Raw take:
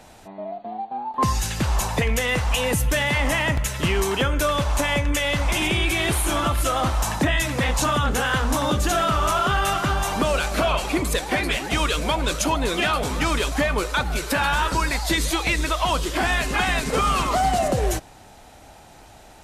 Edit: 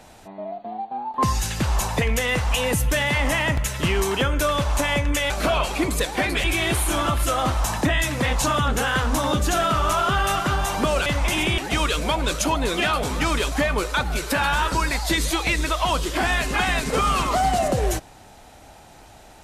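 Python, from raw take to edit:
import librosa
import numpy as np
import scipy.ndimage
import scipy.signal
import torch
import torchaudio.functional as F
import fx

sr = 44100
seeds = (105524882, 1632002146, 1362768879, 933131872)

y = fx.edit(x, sr, fx.swap(start_s=5.3, length_s=0.52, other_s=10.44, other_length_s=1.14), tone=tone)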